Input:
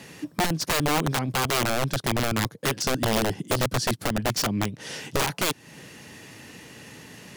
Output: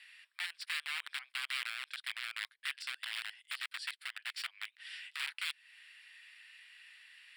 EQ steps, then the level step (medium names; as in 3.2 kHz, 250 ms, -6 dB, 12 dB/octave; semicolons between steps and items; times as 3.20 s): boxcar filter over 7 samples; inverse Chebyshev high-pass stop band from 310 Hz, stop band 80 dB; -4.0 dB